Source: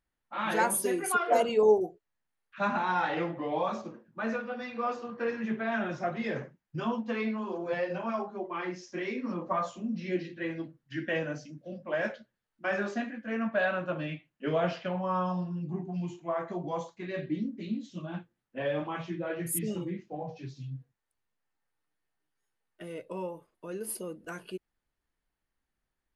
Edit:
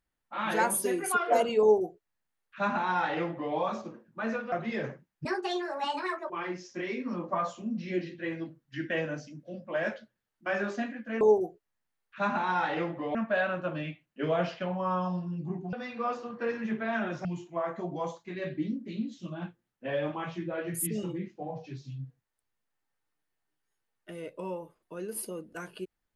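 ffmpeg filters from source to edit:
-filter_complex "[0:a]asplit=8[s0][s1][s2][s3][s4][s5][s6][s7];[s0]atrim=end=4.522[s8];[s1]atrim=start=6.038:end=6.774[s9];[s2]atrim=start=6.77:end=8.48,asetpts=PTS-STARTPTS,asetrate=71883,aresample=44100,atrim=end_sample=46264,asetpts=PTS-STARTPTS[s10];[s3]atrim=start=8.476:end=13.392[s11];[s4]atrim=start=1.608:end=3.552[s12];[s5]atrim=start=13.388:end=15.972[s13];[s6]atrim=start=4.518:end=6.042[s14];[s7]atrim=start=15.968[s15];[s8][s9]acrossfade=d=0.004:c1=hsin:c2=hsin[s16];[s16][s10]acrossfade=d=0.004:c1=hsin:c2=hsin[s17];[s17][s11]acrossfade=d=0.004:c1=hsin:c2=hsin[s18];[s18][s12]acrossfade=d=0.004:c1=hsin:c2=hsin[s19];[s19][s13]acrossfade=d=0.004:c1=hsin:c2=hsin[s20];[s20][s14]acrossfade=d=0.004:c1=hsin:c2=hsin[s21];[s21][s15]acrossfade=d=0.004:c1=hsin:c2=hsin"

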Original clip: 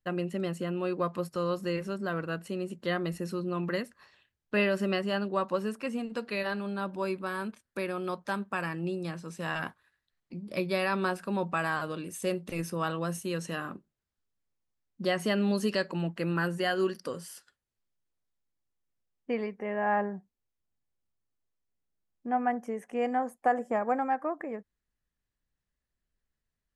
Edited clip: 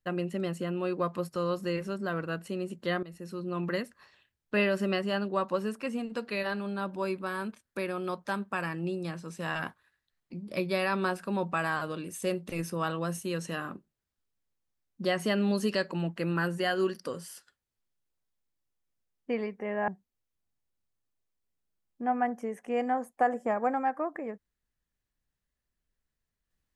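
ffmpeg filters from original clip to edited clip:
-filter_complex "[0:a]asplit=3[s0][s1][s2];[s0]atrim=end=3.03,asetpts=PTS-STARTPTS,afade=t=out:st=3.026:d=0.004:c=hsin:silence=0.141254[s3];[s1]atrim=start=3.03:end=19.882,asetpts=PTS-STARTPTS,afade=t=in:d=0.6:silence=0.141254[s4];[s2]atrim=start=20.128[s5];[s3][s4]concat=n=2:v=0:a=1[s6];[s6][s5]acrossfade=d=0.004:c1=hsin:c2=hsin"

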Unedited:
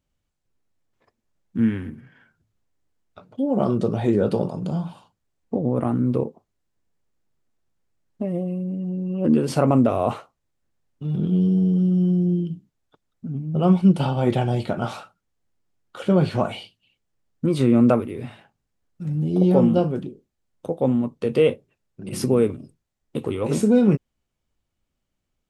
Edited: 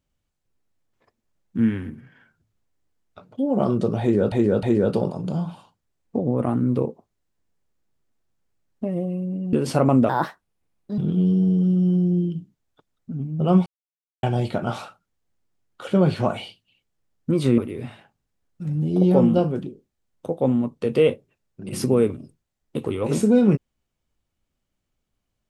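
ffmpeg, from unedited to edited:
-filter_complex "[0:a]asplit=9[s0][s1][s2][s3][s4][s5][s6][s7][s8];[s0]atrim=end=4.322[s9];[s1]atrim=start=4.008:end=4.322[s10];[s2]atrim=start=4.008:end=8.912[s11];[s3]atrim=start=9.348:end=9.914[s12];[s4]atrim=start=9.91:end=11.13,asetpts=PTS-STARTPTS,asetrate=60417,aresample=44100[s13];[s5]atrim=start=11.126:end=13.81,asetpts=PTS-STARTPTS,afade=t=out:st=2.68:d=0.004:c=hsin[s14];[s6]atrim=start=13.81:end=14.38,asetpts=PTS-STARTPTS,volume=0[s15];[s7]atrim=start=14.38:end=17.732,asetpts=PTS-STARTPTS,afade=t=in:d=0.004:c=hsin[s16];[s8]atrim=start=17.978[s17];[s9][s10]acrossfade=d=0.004:c1=hsin:c2=hsin[s18];[s18][s11]acrossfade=d=0.004:c1=hsin:c2=hsin[s19];[s19][s12]acrossfade=d=0.004:c1=hsin:c2=hsin[s20];[s20][s13]acrossfade=d=0.004:c1=hsin:c2=hsin[s21];[s14][s15][s16]concat=n=3:v=0:a=1[s22];[s21][s22]acrossfade=d=0.004:c1=hsin:c2=hsin[s23];[s23][s17]acrossfade=d=0.004:c1=hsin:c2=hsin"

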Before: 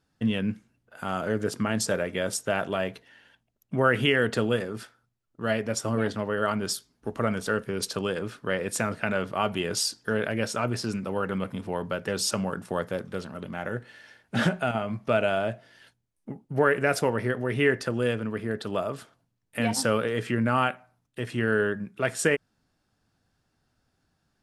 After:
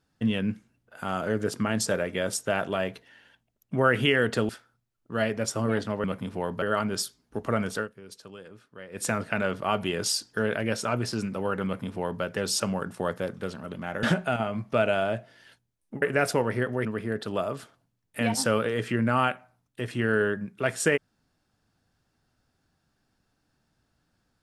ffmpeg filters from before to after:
-filter_complex "[0:a]asplit=9[s0][s1][s2][s3][s4][s5][s6][s7][s8];[s0]atrim=end=4.492[s9];[s1]atrim=start=4.778:end=6.332[s10];[s2]atrim=start=11.358:end=11.942[s11];[s3]atrim=start=6.328:end=7.59,asetpts=PTS-STARTPTS,afade=t=out:st=1.082:d=0.18:c=qsin:silence=0.158489[s12];[s4]atrim=start=7.59:end=8.62,asetpts=PTS-STARTPTS,volume=0.158[s13];[s5]atrim=start=8.62:end=13.742,asetpts=PTS-STARTPTS,afade=t=in:d=0.18:c=qsin:silence=0.158489[s14];[s6]atrim=start=14.378:end=16.372[s15];[s7]atrim=start=16.698:end=17.532[s16];[s8]atrim=start=18.238[s17];[s9][s10]acrossfade=d=0.004:c1=hsin:c2=hsin[s18];[s18][s11]acrossfade=d=0.004:c1=hsin:c2=hsin[s19];[s12][s13][s14]concat=n=3:v=0:a=1[s20];[s19][s20]acrossfade=d=0.004:c1=hsin:c2=hsin[s21];[s21][s15]acrossfade=d=0.004:c1=hsin:c2=hsin[s22];[s22][s16]acrossfade=d=0.004:c1=hsin:c2=hsin[s23];[s23][s17]acrossfade=d=0.004:c1=hsin:c2=hsin"

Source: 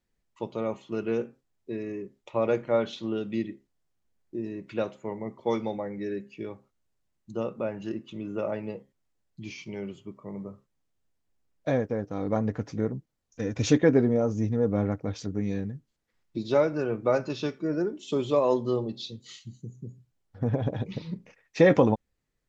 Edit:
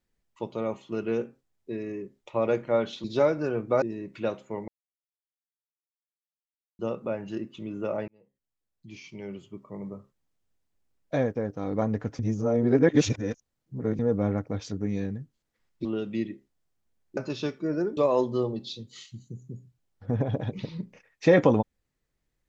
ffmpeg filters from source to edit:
-filter_complex "[0:a]asplit=11[s0][s1][s2][s3][s4][s5][s6][s7][s8][s9][s10];[s0]atrim=end=3.042[s11];[s1]atrim=start=16.388:end=17.172[s12];[s2]atrim=start=4.358:end=5.22,asetpts=PTS-STARTPTS,afade=t=out:st=0.858:d=0.004:c=hsin[s13];[s3]atrim=start=5.22:end=7.33,asetpts=PTS-STARTPTS,volume=0[s14];[s4]atrim=start=7.33:end=8.62,asetpts=PTS-STARTPTS,afade=t=in:d=0.004:c=hsin,afade=t=out:st=1.286:d=0.004:c=hsin[s15];[s5]atrim=start=8.62:end=12.732,asetpts=PTS-STARTPTS,afade=t=in:d=1.59[s16];[s6]atrim=start=12.728:end=14.532,asetpts=PTS-STARTPTS,areverse[s17];[s7]atrim=start=14.528:end=16.392[s18];[s8]atrim=start=3.038:end=4.362[s19];[s9]atrim=start=17.168:end=17.972[s20];[s10]atrim=start=18.298[s21];[s11][s12]acrossfade=d=0.004:c1=hsin:c2=hsin[s22];[s13][s14][s15][s16]concat=n=4:v=0:a=1[s23];[s22][s23]acrossfade=d=0.004:c1=hsin:c2=hsin[s24];[s24][s17]acrossfade=d=0.004:c1=hsin:c2=hsin[s25];[s25][s18]acrossfade=d=0.004:c1=hsin:c2=hsin[s26];[s26][s19]acrossfade=d=0.004:c1=hsin:c2=hsin[s27];[s27][s20]acrossfade=d=0.004:c1=hsin:c2=hsin[s28];[s28][s21]acrossfade=d=0.004:c1=hsin:c2=hsin"

